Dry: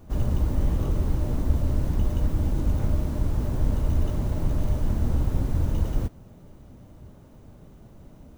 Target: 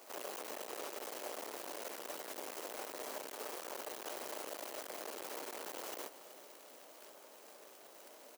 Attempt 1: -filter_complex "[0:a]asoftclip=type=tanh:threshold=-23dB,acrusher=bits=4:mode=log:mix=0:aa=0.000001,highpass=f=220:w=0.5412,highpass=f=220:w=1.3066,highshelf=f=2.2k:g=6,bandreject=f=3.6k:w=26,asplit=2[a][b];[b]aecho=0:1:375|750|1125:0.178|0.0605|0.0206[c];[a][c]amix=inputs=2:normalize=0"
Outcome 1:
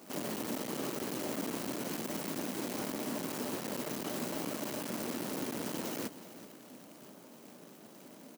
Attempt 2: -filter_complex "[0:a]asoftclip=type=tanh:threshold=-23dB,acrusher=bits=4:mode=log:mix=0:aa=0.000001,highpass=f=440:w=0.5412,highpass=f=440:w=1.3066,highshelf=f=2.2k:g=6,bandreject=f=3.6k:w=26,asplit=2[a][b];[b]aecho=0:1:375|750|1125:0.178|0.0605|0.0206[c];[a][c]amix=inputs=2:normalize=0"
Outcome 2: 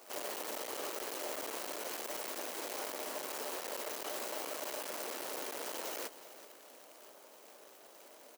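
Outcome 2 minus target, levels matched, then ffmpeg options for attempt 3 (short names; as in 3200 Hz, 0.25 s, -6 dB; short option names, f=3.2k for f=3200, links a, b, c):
soft clip: distortion -5 dB
-filter_complex "[0:a]asoftclip=type=tanh:threshold=-31dB,acrusher=bits=4:mode=log:mix=0:aa=0.000001,highpass=f=440:w=0.5412,highpass=f=440:w=1.3066,highshelf=f=2.2k:g=6,bandreject=f=3.6k:w=26,asplit=2[a][b];[b]aecho=0:1:375|750|1125:0.178|0.0605|0.0206[c];[a][c]amix=inputs=2:normalize=0"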